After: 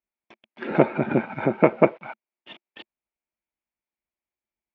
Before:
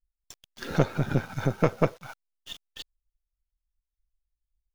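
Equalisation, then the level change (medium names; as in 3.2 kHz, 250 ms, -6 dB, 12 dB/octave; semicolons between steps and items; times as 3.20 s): cabinet simulation 200–2700 Hz, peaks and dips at 220 Hz +10 dB, 350 Hz +10 dB, 620 Hz +7 dB, 890 Hz +7 dB, 2.3 kHz +9 dB; +2.0 dB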